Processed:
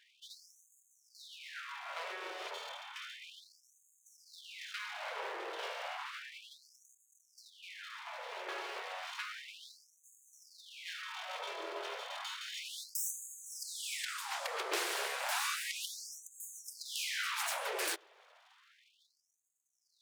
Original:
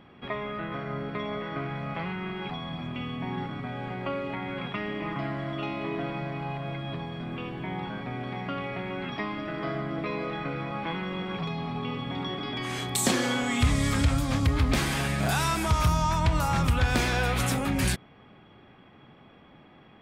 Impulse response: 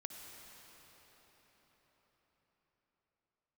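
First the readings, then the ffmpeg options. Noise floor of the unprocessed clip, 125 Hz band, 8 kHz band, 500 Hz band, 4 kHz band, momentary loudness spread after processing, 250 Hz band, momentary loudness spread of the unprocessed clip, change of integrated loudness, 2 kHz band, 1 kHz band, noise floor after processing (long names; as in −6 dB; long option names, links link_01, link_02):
−54 dBFS, below −40 dB, −5.5 dB, −13.0 dB, −6.0 dB, 18 LU, −30.0 dB, 10 LU, −10.5 dB, −8.0 dB, −11.5 dB, −74 dBFS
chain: -af "aeval=exprs='abs(val(0))':channel_layout=same,afftfilt=real='re*gte(b*sr/1024,330*pow(6400/330,0.5+0.5*sin(2*PI*0.32*pts/sr)))':imag='im*gte(b*sr/1024,330*pow(6400/330,0.5+0.5*sin(2*PI*0.32*pts/sr)))':win_size=1024:overlap=0.75,volume=-3.5dB"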